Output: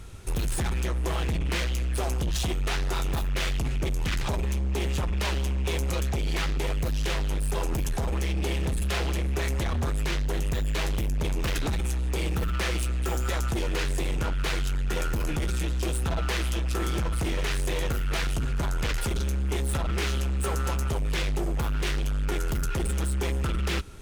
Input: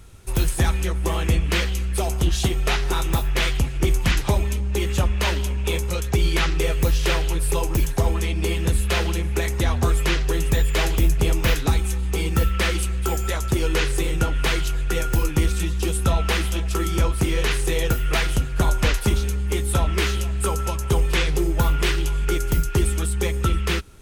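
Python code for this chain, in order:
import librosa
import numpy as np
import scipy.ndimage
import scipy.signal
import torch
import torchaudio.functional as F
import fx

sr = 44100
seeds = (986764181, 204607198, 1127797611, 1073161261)

p1 = fx.high_shelf(x, sr, hz=11000.0, db=-7.5)
p2 = fx.over_compress(p1, sr, threshold_db=-25.0, ratio=-1.0)
p3 = p1 + (p2 * 10.0 ** (0.0 / 20.0))
p4 = np.clip(10.0 ** (19.0 / 20.0) * p3, -1.0, 1.0) / 10.0 ** (19.0 / 20.0)
y = p4 * 10.0 ** (-5.5 / 20.0)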